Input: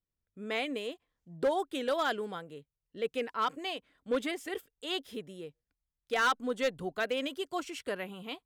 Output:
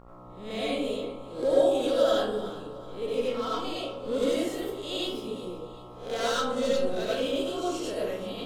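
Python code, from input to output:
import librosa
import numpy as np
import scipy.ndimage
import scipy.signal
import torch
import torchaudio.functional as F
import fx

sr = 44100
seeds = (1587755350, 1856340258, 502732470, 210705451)

p1 = fx.spec_swells(x, sr, rise_s=0.41)
p2 = fx.graphic_eq(p1, sr, hz=(125, 250, 500, 1000, 2000, 4000, 8000), db=(-6, 6, 4, -6, -10, 5, 4))
p3 = fx.dmg_buzz(p2, sr, base_hz=60.0, harmonics=23, level_db=-47.0, tilt_db=-3, odd_only=False)
p4 = fx.comb_fb(p3, sr, f0_hz=550.0, decay_s=0.36, harmonics='all', damping=0.0, mix_pct=70)
p5 = fx.dmg_noise_colour(p4, sr, seeds[0], colour='brown', level_db=-67.0)
p6 = p5 + fx.echo_feedback(p5, sr, ms=375, feedback_pct=46, wet_db=-17.0, dry=0)
p7 = fx.rev_freeverb(p6, sr, rt60_s=0.78, hf_ratio=0.5, predelay_ms=50, drr_db=-6.5)
y = F.gain(torch.from_numpy(p7), 4.5).numpy()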